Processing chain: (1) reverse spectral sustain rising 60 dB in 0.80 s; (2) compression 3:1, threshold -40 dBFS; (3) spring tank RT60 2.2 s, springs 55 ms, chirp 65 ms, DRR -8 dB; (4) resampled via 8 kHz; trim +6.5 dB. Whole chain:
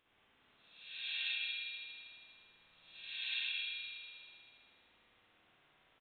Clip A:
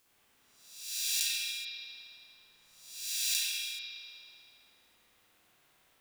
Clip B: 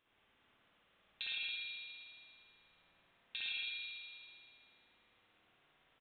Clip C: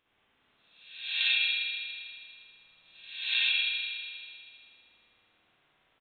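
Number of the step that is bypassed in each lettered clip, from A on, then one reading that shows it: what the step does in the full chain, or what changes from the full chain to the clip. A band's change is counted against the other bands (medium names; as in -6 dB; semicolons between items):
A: 4, crest factor change +9.0 dB; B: 1, loudness change -2.0 LU; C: 2, mean gain reduction 5.5 dB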